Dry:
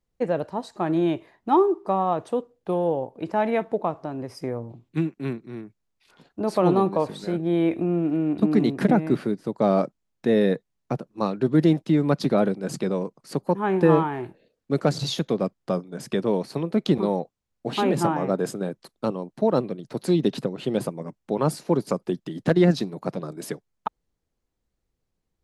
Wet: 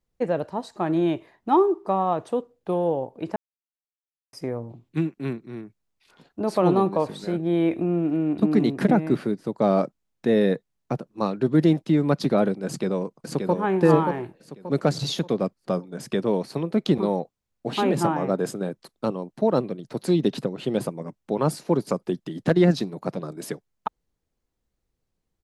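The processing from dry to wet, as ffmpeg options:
-filter_complex "[0:a]asplit=2[a][b];[b]afade=t=in:st=12.66:d=0.01,afade=t=out:st=13.55:d=0.01,aecho=0:1:580|1160|1740|2320:0.595662|0.208482|0.0729686|0.025539[c];[a][c]amix=inputs=2:normalize=0,asplit=3[d][e][f];[d]atrim=end=3.36,asetpts=PTS-STARTPTS,afade=t=out:st=3.356:d=0.004:c=hsin[g];[e]atrim=start=3.36:end=4.33,asetpts=PTS-STARTPTS,volume=0[h];[f]atrim=start=4.33,asetpts=PTS-STARTPTS,afade=t=in:d=0.004:c=hsin[i];[g][h][i]concat=n=3:v=0:a=1"

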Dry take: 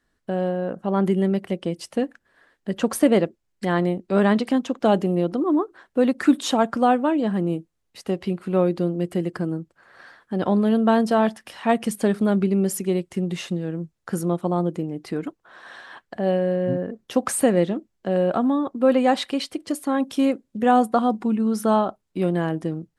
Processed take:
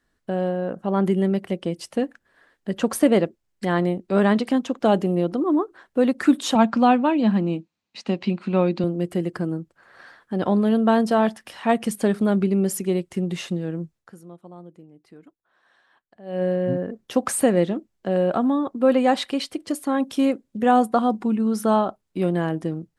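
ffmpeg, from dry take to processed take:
-filter_complex "[0:a]asettb=1/sr,asplit=3[a][b][c];[a]atrim=end=6.554[d];[b]atrim=start=6.55:end=8.84,asetpts=PTS-STARTPTS,afade=t=in:d=0.004:c=qsin,afade=t=out:st=2.286:d=0.004:c=qsin,highpass=130,equalizer=f=220:t=q:w=4:g=8,equalizer=f=430:t=q:w=4:g=-5,equalizer=f=940:t=q:w=4:g=4,equalizer=f=2.5k:t=q:w=4:g=8,equalizer=f=4.1k:t=q:w=4:g=7,lowpass=f=7k:w=0.5412,lowpass=f=7k:w=1.3066[e];[c]atrim=start=8.836[f];[d][e]acrossfade=d=0.004:c1=hsin:c2=qsin[g];[g][f]acrossfade=d=0.004:c1=qsin:c2=hsin,asplit=3[h][i][j];[h]atrim=end=14.16,asetpts=PTS-STARTPTS,afade=t=out:st=13.96:d=0.2:c=qua:silence=0.105925[k];[i]atrim=start=14.16:end=16.22,asetpts=PTS-STARTPTS,volume=-19.5dB[l];[j]atrim=start=16.22,asetpts=PTS-STARTPTS,afade=t=in:d=0.2:c=qua:silence=0.105925[m];[k][l][m]concat=n=3:v=0:a=1"

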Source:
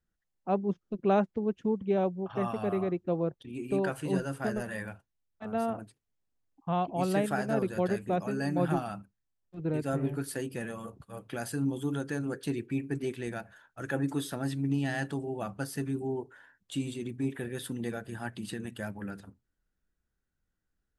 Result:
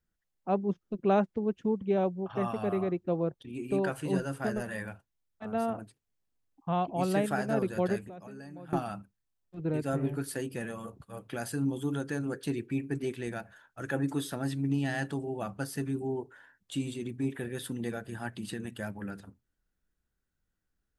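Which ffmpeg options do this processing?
-filter_complex "[0:a]asettb=1/sr,asplit=3[a][b][c];[a]atrim=end=8.004[d];[b]atrim=start=8:end=8.73,asetpts=PTS-STARTPTS,afade=t=in:d=0.004:c=qsin,afade=t=out:st=0.726:d=0.004:c=qsin,acompressor=threshold=-42dB:ratio=10:attack=3.2:release=140:knee=1:detection=peak[e];[c]atrim=start=8.726[f];[d][e]acrossfade=d=0.004:c1=hsin:c2=qsin[g];[g][f]acrossfade=d=0.004:c1=qsin:c2=hsin"

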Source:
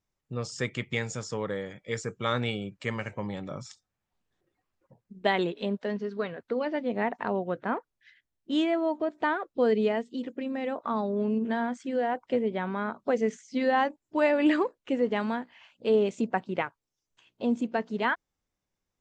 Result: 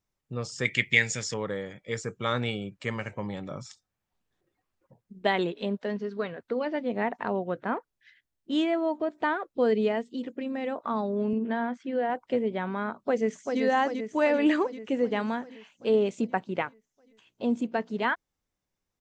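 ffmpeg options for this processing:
-filter_complex "[0:a]asettb=1/sr,asplit=3[a][b][c];[a]atrim=end=0.654[d];[b]atrim=start=0.65:end=1.34,asetpts=PTS-STARTPTS,afade=t=in:d=0.004:c=qsin,afade=t=out:st=0.686:d=0.004:c=qsin,highshelf=f=1.5k:t=q:w=3:g=7[e];[c]atrim=start=1.336[f];[d][e]acrossfade=d=0.004:c1=hsin:c2=qsin[g];[g][f]acrossfade=d=0.004:c1=qsin:c2=hsin,asettb=1/sr,asplit=3[h][i][j];[h]atrim=end=11.334[k];[i]atrim=start=11.33:end=12.1,asetpts=PTS-STARTPTS,afade=t=in:d=0.004:c=qsin,afade=t=out:st=0.766:d=0.004:c=qsin,highpass=140,lowpass=3.5k[l];[j]atrim=start=12.096[m];[k][l]acrossfade=d=0.004:c1=hsin:c2=qsin[n];[n][m]acrossfade=d=0.004:c1=qsin:c2=hsin,asplit=2[o][p];[p]afade=t=in:st=12.96:d=0.01,afade=t=out:st=13.61:d=0.01,aecho=0:1:390|780|1170|1560|1950|2340|2730|3120|3510|3900:0.562341|0.365522|0.237589|0.154433|0.100381|0.0652479|0.0424112|0.0275673|0.0179187|0.0116472[q];[o][q]amix=inputs=2:normalize=0"

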